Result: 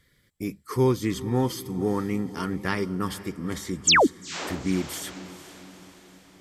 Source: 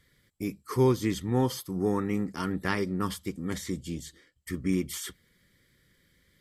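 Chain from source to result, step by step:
sound drawn into the spectrogram fall, 0:03.87–0:04.07, 220–8,900 Hz −18 dBFS
feedback delay with all-pass diffusion 462 ms, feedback 52%, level −15.5 dB
level +1.5 dB

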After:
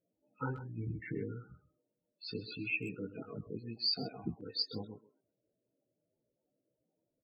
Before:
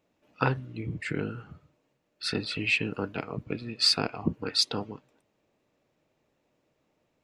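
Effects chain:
0:00.61–0:01.34: low-shelf EQ 370 Hz +5 dB
0:03.74–0:04.44: noise in a band 280–890 Hz −55 dBFS
spectral peaks only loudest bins 16
multi-voice chorus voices 2, 0.73 Hz, delay 17 ms, depth 1.9 ms
far-end echo of a speakerphone 130 ms, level −12 dB
level −6 dB

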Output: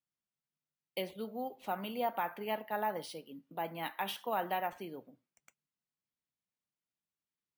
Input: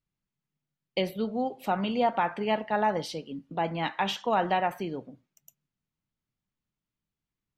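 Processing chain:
high-pass filter 290 Hz 6 dB per octave
bad sample-rate conversion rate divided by 3×, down none, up hold
level −8 dB

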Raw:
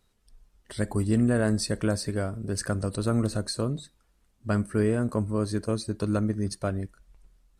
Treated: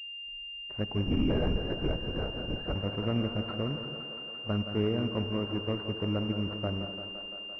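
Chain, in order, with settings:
noise gate with hold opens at −59 dBFS
in parallel at −7.5 dB: bit reduction 5 bits
on the sum: feedback echo with a high-pass in the loop 171 ms, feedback 84%, high-pass 210 Hz, level −9 dB
reverb whose tail is shaped and stops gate 280 ms rising, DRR 11 dB
0:01.04–0:02.75: linear-prediction vocoder at 8 kHz whisper
switching amplifier with a slow clock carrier 2,800 Hz
level −8 dB

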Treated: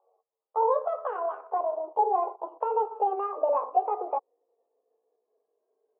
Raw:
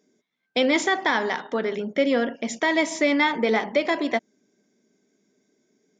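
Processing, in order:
pitch glide at a constant tempo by +11 semitones ending unshifted
Chebyshev band-pass filter 450–1,100 Hz, order 3

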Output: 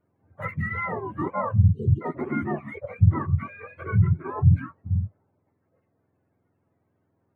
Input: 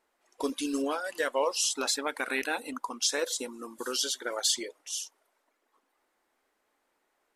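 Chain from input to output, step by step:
frequency axis turned over on the octave scale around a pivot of 750 Hz
time-frequency box erased 0:01.65–0:02.02, 500–2,800 Hz
Butterworth band-reject 5,200 Hz, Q 2.8
level +3 dB

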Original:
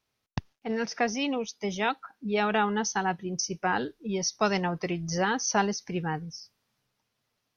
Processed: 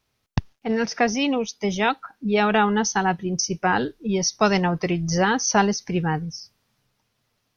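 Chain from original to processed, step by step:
low-shelf EQ 120 Hz +7.5 dB
level +6 dB

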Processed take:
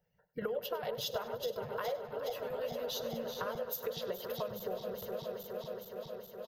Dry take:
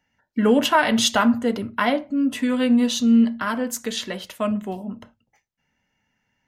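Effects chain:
feedback delay that plays each chunk backwards 209 ms, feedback 85%, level −11 dB
parametric band 2,100 Hz −4.5 dB 0.21 octaves
notch filter 830 Hz, Q 12
harmonic and percussive parts rebalanced harmonic −18 dB
drawn EQ curve 110 Hz 0 dB, 170 Hz +9 dB, 270 Hz −19 dB, 480 Hz +11 dB, 700 Hz +1 dB, 1,700 Hz −9 dB, 2,800 Hz −8 dB, 4,900 Hz −4 dB, 9,100 Hz −22 dB, 13,000 Hz +9 dB
downward compressor 6 to 1, threshold −35 dBFS, peak gain reduction 17.5 dB
on a send: repeating echo 99 ms, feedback 46%, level −16 dB

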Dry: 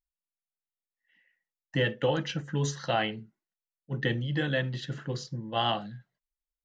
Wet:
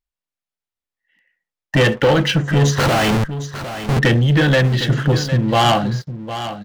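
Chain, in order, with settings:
in parallel at −1 dB: downward compressor, threshold −41 dBFS, peak gain reduction 18 dB
on the sum: parametric band 87 Hz +7 dB 0.35 octaves
0:02.78–0:03.99: comparator with hysteresis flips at −42 dBFS
high-shelf EQ 6,300 Hz −10 dB
leveller curve on the samples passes 3
single-tap delay 756 ms −11.5 dB
level +6 dB

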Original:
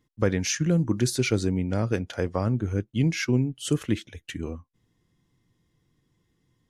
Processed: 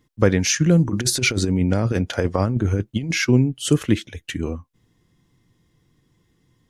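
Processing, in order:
0:00.85–0:03.18: compressor whose output falls as the input rises −26 dBFS, ratio −0.5
level +7 dB

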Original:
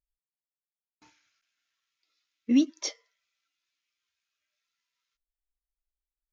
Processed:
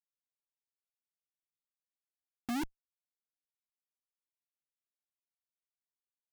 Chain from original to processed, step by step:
harmonic-percussive split with one part muted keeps harmonic
downward compressor 5 to 1, threshold −31 dBFS, peak gain reduction 13 dB
comparator with hysteresis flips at −37.5 dBFS
level +13.5 dB

